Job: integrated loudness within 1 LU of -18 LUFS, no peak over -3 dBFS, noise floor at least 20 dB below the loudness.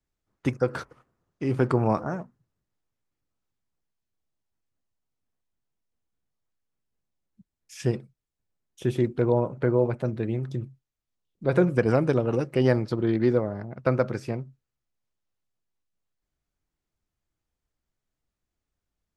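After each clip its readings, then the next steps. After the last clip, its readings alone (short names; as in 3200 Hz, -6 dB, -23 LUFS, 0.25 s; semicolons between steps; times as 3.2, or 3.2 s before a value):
loudness -26.0 LUFS; peak -7.0 dBFS; loudness target -18.0 LUFS
-> gain +8 dB; limiter -3 dBFS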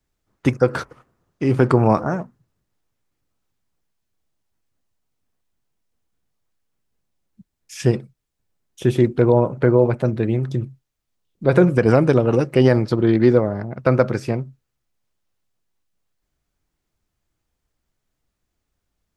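loudness -18.5 LUFS; peak -3.0 dBFS; noise floor -78 dBFS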